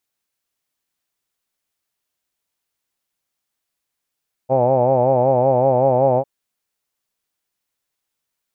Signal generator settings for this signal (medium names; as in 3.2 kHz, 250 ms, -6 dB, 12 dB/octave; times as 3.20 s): formant-synthesis vowel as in hawed, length 1.75 s, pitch 127 Hz, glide +0.5 st